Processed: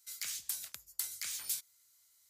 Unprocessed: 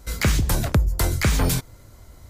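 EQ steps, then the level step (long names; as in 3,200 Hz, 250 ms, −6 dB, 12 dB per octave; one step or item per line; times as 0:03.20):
first difference
guitar amp tone stack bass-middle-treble 5-5-5
high-shelf EQ 9,800 Hz −8 dB
0.0 dB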